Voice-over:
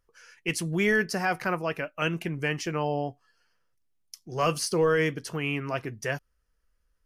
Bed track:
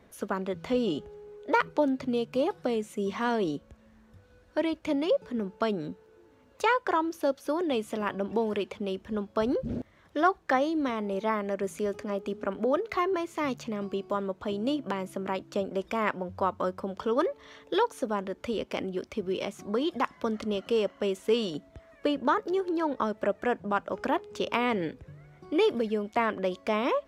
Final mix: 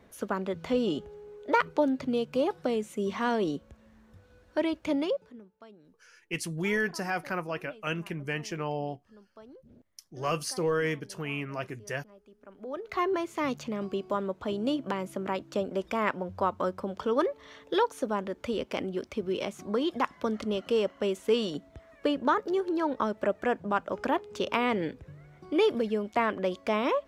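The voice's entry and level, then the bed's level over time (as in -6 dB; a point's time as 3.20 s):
5.85 s, -4.5 dB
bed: 5.03 s 0 dB
5.51 s -23.5 dB
12.38 s -23.5 dB
13.03 s 0 dB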